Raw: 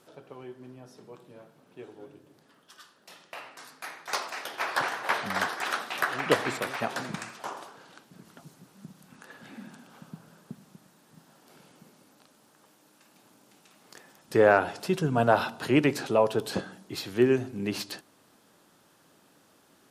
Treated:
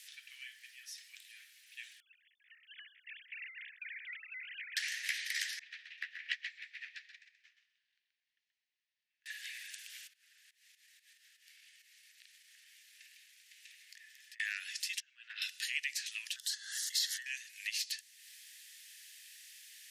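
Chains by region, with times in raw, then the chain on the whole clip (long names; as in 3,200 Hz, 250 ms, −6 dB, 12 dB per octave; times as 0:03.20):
0:02.00–0:04.77: three sine waves on the formant tracks + downward compressor, threshold −44 dBFS + high-frequency loss of the air 290 metres
0:05.59–0:09.26: high-frequency loss of the air 220 metres + repeating echo 129 ms, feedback 32%, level −4 dB + expander for the loud parts 2.5 to 1, over −40 dBFS
0:10.07–0:14.40: delay that plays each chunk backwards 685 ms, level −9 dB + high-shelf EQ 4,200 Hz −12 dB + downward compressor, threshold −58 dBFS
0:15.00–0:15.42: high-frequency loss of the air 210 metres + output level in coarse steps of 19 dB + multiband upward and downward expander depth 40%
0:16.36–0:17.26: high-shelf EQ 6,100 Hz −7.5 dB + phaser with its sweep stopped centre 660 Hz, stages 6 + background raised ahead of every attack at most 34 dB per second
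whole clip: Chebyshev high-pass filter 1,800 Hz, order 6; dynamic equaliser 6,300 Hz, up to +5 dB, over −54 dBFS, Q 1.2; downward compressor 2.5 to 1, threshold −54 dBFS; level +12 dB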